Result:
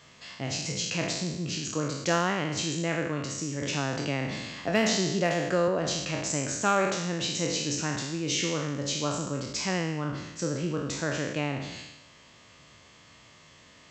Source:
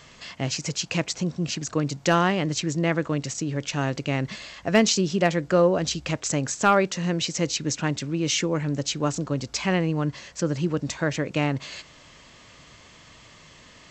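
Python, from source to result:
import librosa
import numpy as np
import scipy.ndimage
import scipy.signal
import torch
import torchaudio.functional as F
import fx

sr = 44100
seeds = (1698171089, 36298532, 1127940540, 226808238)

y = fx.spec_trails(x, sr, decay_s=0.98)
y = scipy.signal.sosfilt(scipy.signal.butter(2, 65.0, 'highpass', fs=sr, output='sos'), y)
y = fx.band_squash(y, sr, depth_pct=40, at=(3.62, 5.68))
y = y * 10.0 ** (-7.0 / 20.0)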